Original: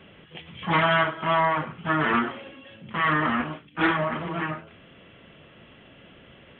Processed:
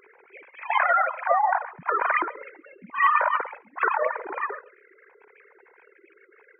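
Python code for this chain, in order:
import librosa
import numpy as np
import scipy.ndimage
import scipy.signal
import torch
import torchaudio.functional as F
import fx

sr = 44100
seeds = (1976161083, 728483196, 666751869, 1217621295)

p1 = fx.sine_speech(x, sr)
p2 = fx.dynamic_eq(p1, sr, hz=1900.0, q=1.4, threshold_db=-37.0, ratio=4.0, max_db=4)
p3 = fx.formant_shift(p2, sr, semitones=-4)
y = p3 + fx.echo_single(p3, sr, ms=136, db=-21.0, dry=0)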